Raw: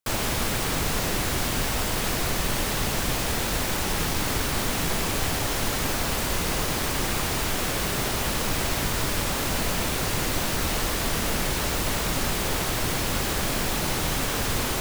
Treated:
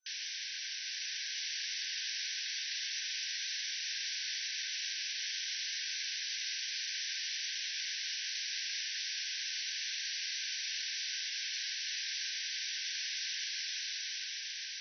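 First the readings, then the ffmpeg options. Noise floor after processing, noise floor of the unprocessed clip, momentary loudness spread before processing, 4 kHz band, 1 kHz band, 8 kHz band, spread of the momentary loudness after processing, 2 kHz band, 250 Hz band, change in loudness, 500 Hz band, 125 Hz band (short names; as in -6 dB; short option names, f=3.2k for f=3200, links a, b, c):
-41 dBFS, -27 dBFS, 0 LU, -5.0 dB, under -40 dB, -10.5 dB, 2 LU, -10.0 dB, under -40 dB, -10.5 dB, under -40 dB, under -40 dB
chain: -af "aderivative,aeval=exprs='clip(val(0),-1,0.0119)':c=same,afftfilt=real='re*between(b*sr/4096,1500,6100)':imag='im*between(b*sr/4096,1500,6100)':win_size=4096:overlap=0.75,dynaudnorm=f=260:g=9:m=3dB"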